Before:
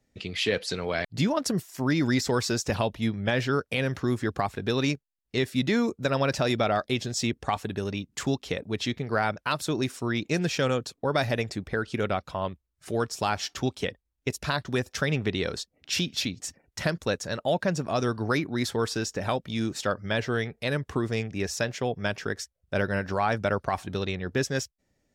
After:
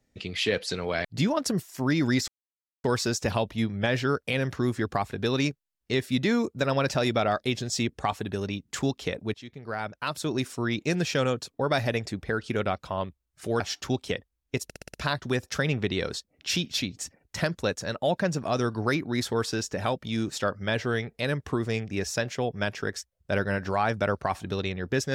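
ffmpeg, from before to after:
-filter_complex "[0:a]asplit=9[s0][s1][s2][s3][s4][s5][s6][s7][s8];[s0]atrim=end=2.28,asetpts=PTS-STARTPTS,afade=t=out:st=2.276:d=0.004:c=hsin,apad=pad_dur=0.56[s9];[s1]atrim=start=2.28:end=8.78,asetpts=PTS-STARTPTS,afade=t=in:d=0.004:c=hsin,afade=t=out:st=6.496:d=0.004:c=hsin:silence=0.105925[s10];[s2]atrim=start=8.78:end=13.042,asetpts=PTS-STARTPTS,afade=t=in:d=1.12:silence=0.105925[s11];[s3]atrim=start=13.328:end=14.432[s12];[s4]atrim=start=14.368:end=14.432[s13];[s5]atrim=start=14.368:end=14.432[s14];[s6]atrim=start=14.368:end=14.432[s15];[s7]atrim=start=14.368:end=14.432[s16];[s8]atrim=start=14.368[s17];[s9][s10][s11]concat=n=3:v=0:a=1[s18];[s18][s12]acrossfade=d=0.004:c1=hsin:c2=hsin[s19];[s19][s13]acrossfade=d=0.004:c1=hsin:c2=hsin[s20];[s20][s14]acrossfade=d=0.004:c1=hsin:c2=hsin[s21];[s21][s15]acrossfade=d=0.004:c1=hsin:c2=hsin[s22];[s22][s16]acrossfade=d=0.004:c1=hsin:c2=hsin[s23];[s23][s17]acrossfade=d=0.004:c1=hsin:c2=hsin"

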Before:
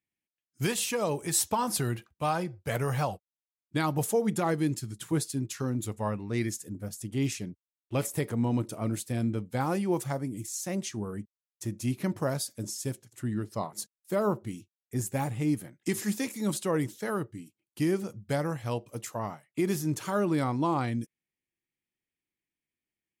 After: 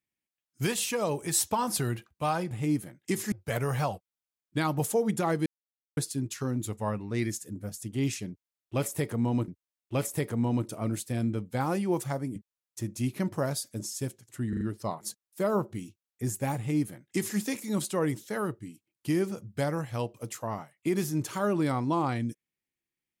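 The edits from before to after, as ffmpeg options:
-filter_complex "[0:a]asplit=10[s0][s1][s2][s3][s4][s5][s6][s7][s8][s9];[s0]atrim=end=2.512[s10];[s1]atrim=start=15.288:end=16.102[s11];[s2]atrim=start=2.508:end=4.65,asetpts=PTS-STARTPTS,afade=t=out:st=2.138:d=0.004:c=hsin[s12];[s3]atrim=start=4.65:end=5.16,asetpts=PTS-STARTPTS,volume=0[s13];[s4]atrim=start=5.16:end=8.672,asetpts=PTS-STARTPTS,afade=t=in:d=0.004:c=hsin[s14];[s5]atrim=start=7.478:end=10.362[s15];[s6]atrim=start=11.198:end=13.372[s16];[s7]atrim=start=13.328:end=13.372[s17];[s8]atrim=start=13.328:end=13.372[s18];[s9]atrim=start=13.328[s19];[s10][s11]acrossfade=d=0.004:c1=hsin:c2=hsin[s20];[s12][s13][s14]concat=n=3:v=0:a=1[s21];[s20][s21]acrossfade=d=0.004:c1=hsin:c2=hsin[s22];[s22][s15]acrossfade=d=0.004:c1=hsin:c2=hsin[s23];[s23][s16]acrossfade=d=0.004:c1=hsin:c2=hsin[s24];[s24][s17]acrossfade=d=0.004:c1=hsin:c2=hsin[s25];[s25][s18]acrossfade=d=0.004:c1=hsin:c2=hsin[s26];[s26][s19]acrossfade=d=0.004:c1=hsin:c2=hsin"

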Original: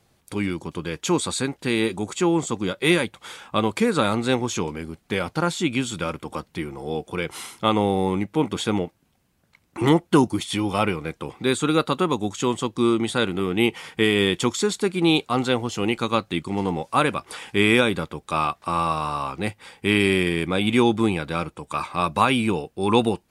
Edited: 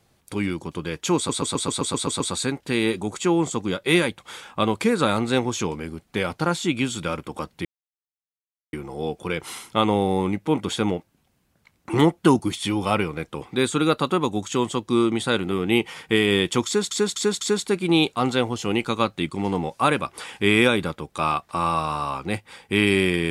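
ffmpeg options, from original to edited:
-filter_complex "[0:a]asplit=13[s0][s1][s2][s3][s4][s5][s6][s7][s8][s9][s10][s11][s12];[s0]atrim=end=1.292[s13];[s1]atrim=start=1.158:end=1.292[s14];[s2]atrim=start=1.158:end=1.292[s15];[s3]atrim=start=1.158:end=1.292[s16];[s4]atrim=start=1.158:end=1.292[s17];[s5]atrim=start=1.158:end=1.292[s18];[s6]atrim=start=1.158:end=1.292[s19];[s7]atrim=start=1.158:end=1.292[s20];[s8]atrim=start=1.158:end=6.61,asetpts=PTS-STARTPTS,afade=t=out:st=5.448:d=0.004:c=hsin,apad=pad_dur=1.08[s21];[s9]atrim=start=6.61:end=14.792,asetpts=PTS-STARTPTS,afade=t=in:d=0.004:c=hsin[s22];[s10]atrim=start=14.538:end=14.792[s23];[s11]atrim=start=14.538:end=14.792[s24];[s12]atrim=start=14.538[s25];[s13][s14]acrossfade=d=0.004:c1=hsin:c2=hsin[s26];[s26][s15]acrossfade=d=0.004:c1=hsin:c2=hsin[s27];[s27][s16]acrossfade=d=0.004:c1=hsin:c2=hsin[s28];[s28][s17]acrossfade=d=0.004:c1=hsin:c2=hsin[s29];[s29][s18]acrossfade=d=0.004:c1=hsin:c2=hsin[s30];[s30][s19]acrossfade=d=0.004:c1=hsin:c2=hsin[s31];[s31][s20]acrossfade=d=0.004:c1=hsin:c2=hsin[s32];[s21][s22]concat=n=2:v=0:a=1[s33];[s32][s33]acrossfade=d=0.004:c1=hsin:c2=hsin[s34];[s34][s23]acrossfade=d=0.004:c1=hsin:c2=hsin[s35];[s35][s24]acrossfade=d=0.004:c1=hsin:c2=hsin[s36];[s36][s25]acrossfade=d=0.004:c1=hsin:c2=hsin"

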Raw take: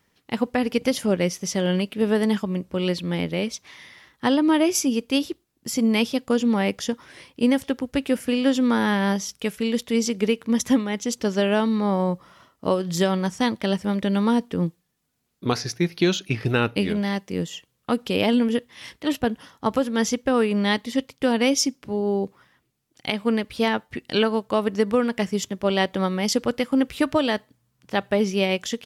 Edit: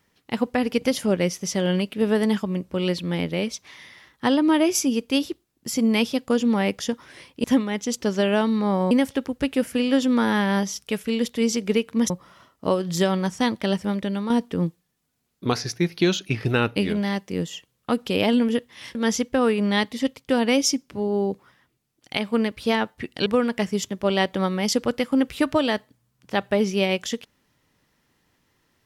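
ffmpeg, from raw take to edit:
-filter_complex "[0:a]asplit=7[s0][s1][s2][s3][s4][s5][s6];[s0]atrim=end=7.442[s7];[s1]atrim=start=10.628:end=12.102[s8];[s2]atrim=start=7.438:end=10.632[s9];[s3]atrim=start=12.098:end=14.3,asetpts=PTS-STARTPTS,afade=t=out:st=1.722:d=0.48:silence=0.375837[s10];[s4]atrim=start=14.3:end=18.952,asetpts=PTS-STARTPTS,afade=t=in:d=0.004:c=hsin:silence=0.375837[s11];[s5]atrim=start=19.878:end=24.192[s12];[s6]atrim=start=24.858[s13];[s7][s8]acrossfade=d=0.004:c1=hsin:c2=hsin[s14];[s14][s9]acrossfade=d=0.004:c1=hsin:c2=hsin[s15];[s10][s11]concat=n=2:v=0:a=1[s16];[s15][s16]acrossfade=d=0.004:c1=hsin:c2=hsin[s17];[s17][s12]acrossfade=d=0.004:c1=hsin:c2=hsin[s18];[s18][s13]acrossfade=d=0.004:c1=hsin:c2=hsin"

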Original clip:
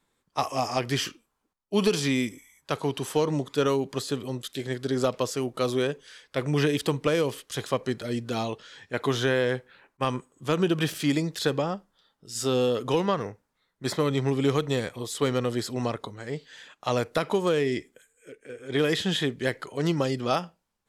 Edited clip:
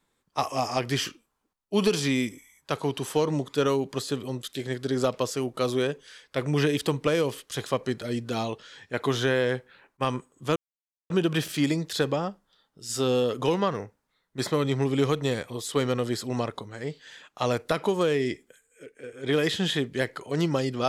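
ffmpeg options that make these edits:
-filter_complex "[0:a]asplit=2[s0][s1];[s0]atrim=end=10.56,asetpts=PTS-STARTPTS,afade=t=out:st=10.556:d=0.004:c=hsin,apad=pad_dur=0.54[s2];[s1]atrim=start=10.56,asetpts=PTS-STARTPTS,afade=t=in:d=0.004:c=hsin[s3];[s2][s3]concat=n=2:v=0:a=1"

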